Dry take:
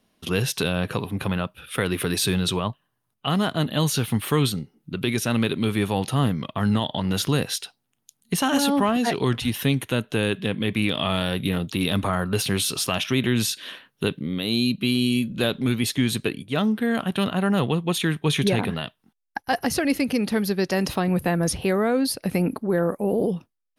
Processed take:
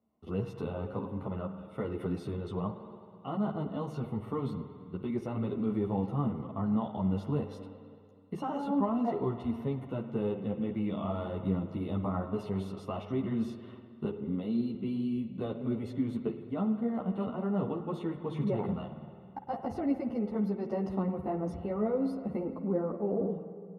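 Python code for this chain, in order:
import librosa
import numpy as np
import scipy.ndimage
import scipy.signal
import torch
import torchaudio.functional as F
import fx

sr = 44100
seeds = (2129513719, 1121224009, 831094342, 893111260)

p1 = scipy.signal.sosfilt(scipy.signal.butter(2, 43.0, 'highpass', fs=sr, output='sos'), x)
p2 = fx.level_steps(p1, sr, step_db=15)
p3 = p1 + (p2 * 10.0 ** (-1.0 / 20.0))
p4 = scipy.signal.savgol_filter(p3, 65, 4, mode='constant')
p5 = fx.rev_spring(p4, sr, rt60_s=2.3, pass_ms=(52,), chirp_ms=60, drr_db=8.0)
p6 = fx.ensemble(p5, sr)
y = p6 * 10.0 ** (-9.0 / 20.0)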